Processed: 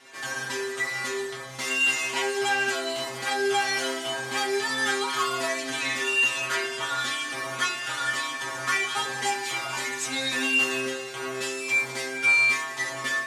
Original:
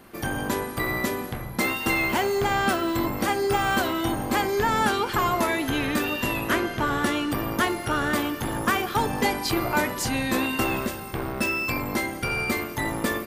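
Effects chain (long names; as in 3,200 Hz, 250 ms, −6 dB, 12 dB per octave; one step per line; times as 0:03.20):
running median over 9 samples
meter weighting curve ITU-R 468
in parallel at +2 dB: brickwall limiter −23.5 dBFS, peak gain reduction 18 dB
on the sum: stiff-string resonator 130 Hz, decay 0.49 s, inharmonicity 0.002
on a send: backwards echo 91 ms −15.5 dB
on the sum: level +7 dB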